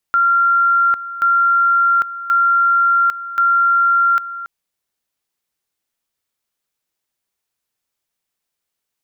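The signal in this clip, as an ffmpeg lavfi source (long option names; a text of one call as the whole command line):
ffmpeg -f lavfi -i "aevalsrc='pow(10,(-10.5-14.5*gte(mod(t,1.08),0.8))/20)*sin(2*PI*1380*t)':duration=4.32:sample_rate=44100" out.wav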